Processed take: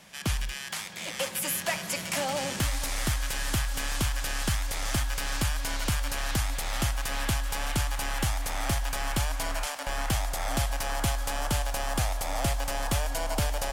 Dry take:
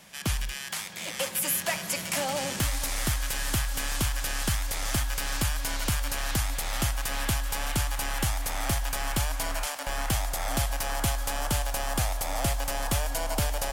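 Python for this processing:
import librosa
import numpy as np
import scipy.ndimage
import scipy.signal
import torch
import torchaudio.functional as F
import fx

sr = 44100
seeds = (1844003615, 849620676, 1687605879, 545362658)

y = fx.high_shelf(x, sr, hz=11000.0, db=-7.0)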